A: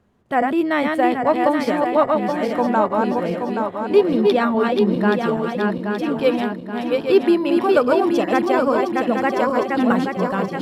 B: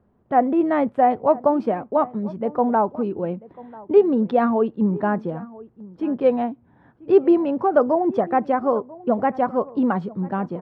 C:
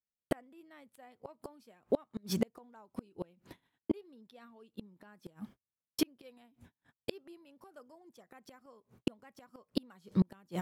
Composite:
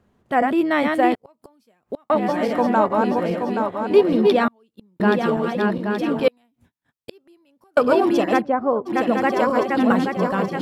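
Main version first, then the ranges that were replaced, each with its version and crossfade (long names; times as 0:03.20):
A
0:01.15–0:02.10: punch in from C
0:04.48–0:05.00: punch in from C
0:06.28–0:07.77: punch in from C
0:08.40–0:08.88: punch in from B, crossfade 0.06 s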